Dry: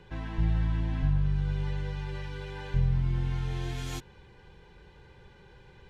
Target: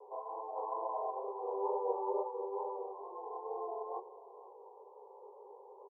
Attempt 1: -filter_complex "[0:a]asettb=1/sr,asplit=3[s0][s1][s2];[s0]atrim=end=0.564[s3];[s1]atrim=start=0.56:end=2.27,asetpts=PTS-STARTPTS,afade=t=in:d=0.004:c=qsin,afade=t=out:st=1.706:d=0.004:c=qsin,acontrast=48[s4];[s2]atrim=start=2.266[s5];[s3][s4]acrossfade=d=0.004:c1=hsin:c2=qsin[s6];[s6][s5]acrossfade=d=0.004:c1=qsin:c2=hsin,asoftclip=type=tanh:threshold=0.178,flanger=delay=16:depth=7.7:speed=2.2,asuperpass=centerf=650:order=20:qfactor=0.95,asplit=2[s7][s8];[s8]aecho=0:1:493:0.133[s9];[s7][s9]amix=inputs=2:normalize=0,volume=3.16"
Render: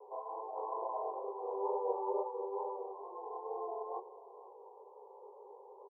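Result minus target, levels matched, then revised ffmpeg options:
saturation: distortion +16 dB
-filter_complex "[0:a]asettb=1/sr,asplit=3[s0][s1][s2];[s0]atrim=end=0.564[s3];[s1]atrim=start=0.56:end=2.27,asetpts=PTS-STARTPTS,afade=t=in:d=0.004:c=qsin,afade=t=out:st=1.706:d=0.004:c=qsin,acontrast=48[s4];[s2]atrim=start=2.266[s5];[s3][s4]acrossfade=d=0.004:c1=hsin:c2=qsin[s6];[s6][s5]acrossfade=d=0.004:c1=qsin:c2=hsin,asoftclip=type=tanh:threshold=0.531,flanger=delay=16:depth=7.7:speed=2.2,asuperpass=centerf=650:order=20:qfactor=0.95,asplit=2[s7][s8];[s8]aecho=0:1:493:0.133[s9];[s7][s9]amix=inputs=2:normalize=0,volume=3.16"

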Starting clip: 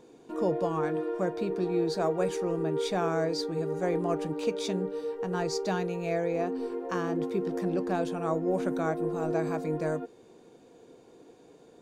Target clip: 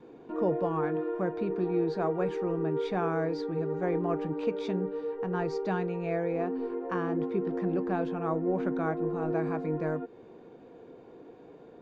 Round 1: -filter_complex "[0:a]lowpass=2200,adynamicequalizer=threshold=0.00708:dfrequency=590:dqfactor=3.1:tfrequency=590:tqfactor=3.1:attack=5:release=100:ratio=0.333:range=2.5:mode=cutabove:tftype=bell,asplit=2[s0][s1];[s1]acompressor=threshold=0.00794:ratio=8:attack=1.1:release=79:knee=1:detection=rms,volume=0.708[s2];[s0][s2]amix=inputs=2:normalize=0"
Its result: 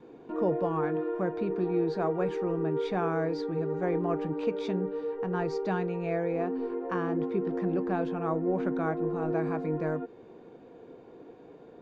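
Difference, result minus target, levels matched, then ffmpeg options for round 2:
compression: peak gain reduction -6.5 dB
-filter_complex "[0:a]lowpass=2200,adynamicequalizer=threshold=0.00708:dfrequency=590:dqfactor=3.1:tfrequency=590:tqfactor=3.1:attack=5:release=100:ratio=0.333:range=2.5:mode=cutabove:tftype=bell,asplit=2[s0][s1];[s1]acompressor=threshold=0.00335:ratio=8:attack=1.1:release=79:knee=1:detection=rms,volume=0.708[s2];[s0][s2]amix=inputs=2:normalize=0"

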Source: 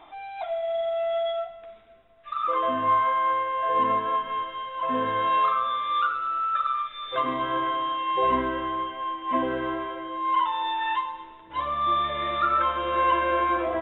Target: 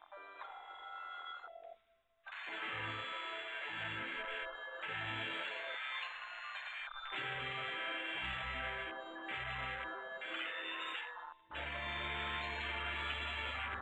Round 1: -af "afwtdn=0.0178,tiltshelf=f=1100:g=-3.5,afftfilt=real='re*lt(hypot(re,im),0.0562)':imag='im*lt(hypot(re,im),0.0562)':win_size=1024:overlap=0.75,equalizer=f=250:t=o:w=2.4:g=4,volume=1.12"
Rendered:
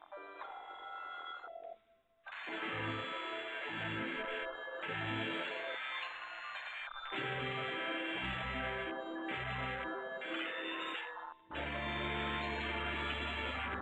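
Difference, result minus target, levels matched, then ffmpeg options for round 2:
250 Hz band +8.5 dB
-af "afwtdn=0.0178,tiltshelf=f=1100:g=-3.5,afftfilt=real='re*lt(hypot(re,im),0.0562)':imag='im*lt(hypot(re,im),0.0562)':win_size=1024:overlap=0.75,equalizer=f=250:t=o:w=2.4:g=-7,volume=1.12"

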